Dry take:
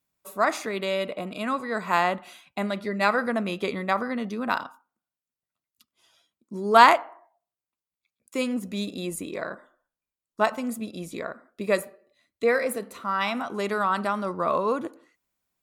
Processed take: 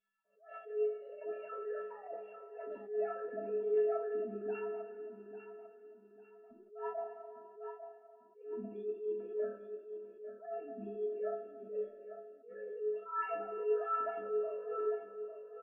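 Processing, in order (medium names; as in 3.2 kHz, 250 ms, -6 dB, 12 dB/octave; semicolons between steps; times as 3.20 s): formants replaced by sine waves; boxcar filter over 41 samples; gate with hold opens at -53 dBFS; reverse; compression 12:1, threshold -39 dBFS, peak gain reduction 24 dB; reverse; feedback delay 848 ms, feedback 31%, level -10.5 dB; upward compressor, threshold -59 dBFS; inharmonic resonator 200 Hz, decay 0.68 s, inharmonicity 0.03; reverberation, pre-delay 3 ms, DRR -1.5 dB; attacks held to a fixed rise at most 130 dB/s; trim +16.5 dB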